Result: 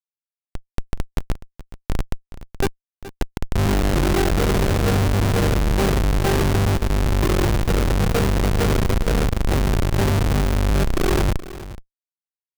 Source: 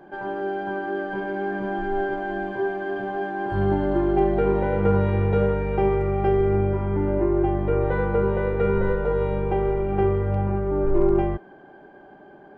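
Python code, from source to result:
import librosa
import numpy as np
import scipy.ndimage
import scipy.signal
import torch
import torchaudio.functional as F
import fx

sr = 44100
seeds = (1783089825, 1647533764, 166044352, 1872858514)

y = fx.peak_eq(x, sr, hz=2400.0, db=-13.0, octaves=2.1, at=(1.36, 2.49))
y = fx.schmitt(y, sr, flips_db=-19.0)
y = y + 10.0 ** (-15.5 / 20.0) * np.pad(y, (int(423 * sr / 1000.0), 0))[:len(y)]
y = F.gain(torch.from_numpy(y), 5.5).numpy()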